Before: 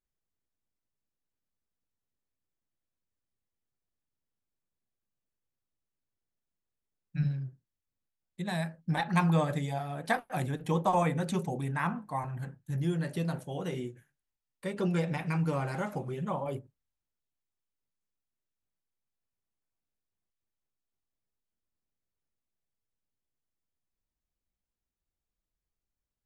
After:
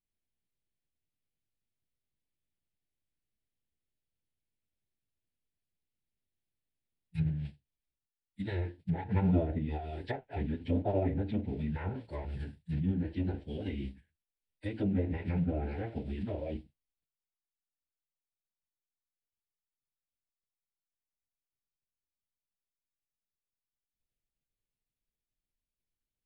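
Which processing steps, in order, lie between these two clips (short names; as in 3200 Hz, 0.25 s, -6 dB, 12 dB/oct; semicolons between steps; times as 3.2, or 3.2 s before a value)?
modulation noise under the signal 19 dB; treble ducked by the level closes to 1300 Hz, closed at -26.5 dBFS; formant-preserving pitch shift -10.5 st; fixed phaser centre 2800 Hz, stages 4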